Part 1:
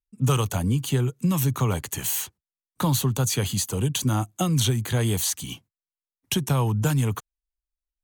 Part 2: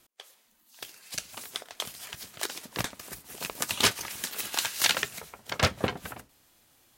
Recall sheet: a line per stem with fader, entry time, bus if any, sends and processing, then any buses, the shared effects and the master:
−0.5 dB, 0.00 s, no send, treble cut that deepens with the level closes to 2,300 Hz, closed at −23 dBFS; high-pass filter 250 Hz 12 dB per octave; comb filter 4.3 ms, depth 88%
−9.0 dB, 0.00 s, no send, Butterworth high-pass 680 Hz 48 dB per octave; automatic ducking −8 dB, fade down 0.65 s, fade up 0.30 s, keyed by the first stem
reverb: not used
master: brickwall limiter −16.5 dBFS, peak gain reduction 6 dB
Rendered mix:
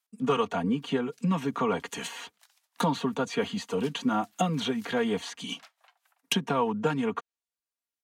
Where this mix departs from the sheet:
stem 2 −9.0 dB → −19.5 dB
master: missing brickwall limiter −16.5 dBFS, peak gain reduction 6 dB

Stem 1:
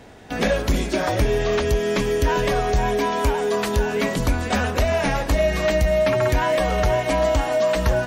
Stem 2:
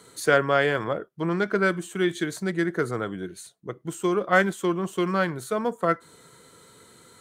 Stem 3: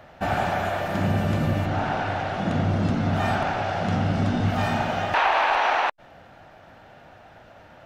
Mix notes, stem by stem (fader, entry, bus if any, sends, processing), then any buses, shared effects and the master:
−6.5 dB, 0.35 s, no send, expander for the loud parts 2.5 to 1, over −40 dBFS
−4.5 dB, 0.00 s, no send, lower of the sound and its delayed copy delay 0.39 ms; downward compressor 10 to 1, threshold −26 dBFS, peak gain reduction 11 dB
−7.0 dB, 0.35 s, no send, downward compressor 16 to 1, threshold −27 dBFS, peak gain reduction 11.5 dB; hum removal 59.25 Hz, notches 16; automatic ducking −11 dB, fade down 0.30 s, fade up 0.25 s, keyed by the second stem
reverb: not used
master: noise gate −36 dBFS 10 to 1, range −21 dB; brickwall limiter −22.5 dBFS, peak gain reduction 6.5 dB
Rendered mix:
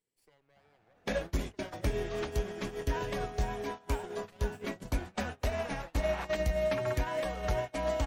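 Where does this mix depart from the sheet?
stem 1: entry 0.35 s → 0.65 s
stem 2 −4.5 dB → −16.0 dB

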